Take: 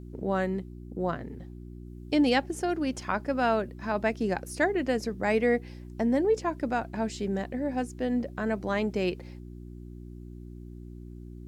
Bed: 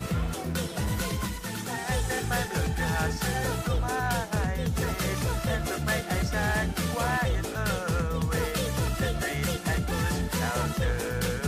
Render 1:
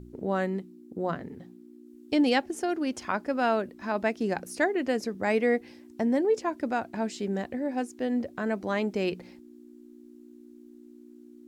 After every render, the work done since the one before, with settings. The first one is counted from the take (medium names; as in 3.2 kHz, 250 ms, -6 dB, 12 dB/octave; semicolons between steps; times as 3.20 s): de-hum 60 Hz, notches 3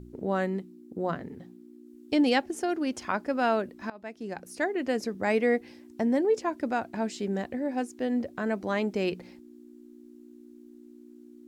3.90–5.02 s: fade in, from -22 dB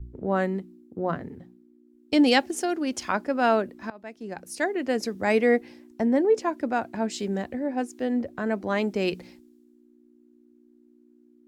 in parallel at 0 dB: compression, threshold -34 dBFS, peak gain reduction 14 dB; on the sum: three bands expanded up and down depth 70%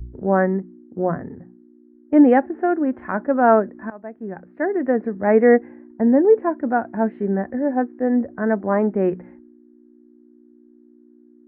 elliptic low-pass 1.8 kHz, stop band 70 dB; harmonic-percussive split harmonic +8 dB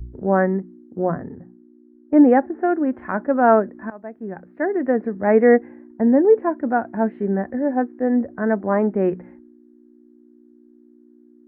1.10–2.62 s: low-pass 2 kHz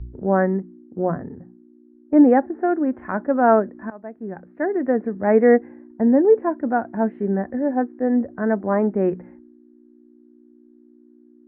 distance through air 270 m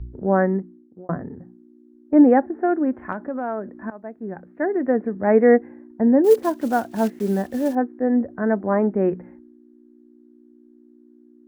0.58–1.09 s: fade out; 3.12–3.71 s: compression 3:1, threshold -26 dBFS; 6.24–7.76 s: block-companded coder 5-bit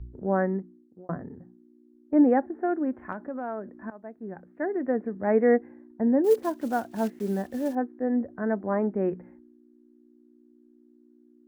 trim -6.5 dB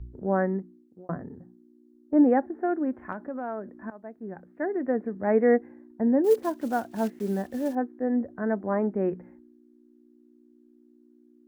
1.25–2.26 s: peaking EQ 2.4 kHz -8.5 dB 0.44 oct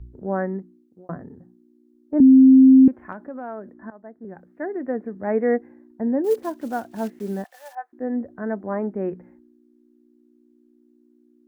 2.20–2.88 s: bleep 263 Hz -7 dBFS; 3.73–4.25 s: steep low-pass 2.1 kHz 72 dB/octave; 7.44–7.93 s: elliptic high-pass 710 Hz, stop band 80 dB